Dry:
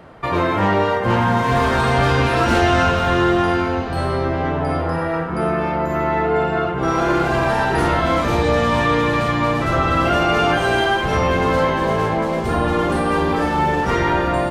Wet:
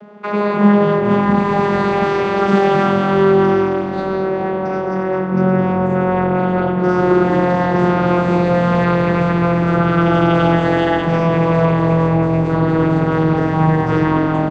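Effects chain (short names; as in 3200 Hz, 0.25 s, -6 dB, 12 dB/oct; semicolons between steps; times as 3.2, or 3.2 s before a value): vocoder on a gliding note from G#3, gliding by -5 st; on a send: frequency-shifting echo 0.212 s, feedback 43%, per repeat -45 Hz, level -12 dB; on the sum: gain +4 dB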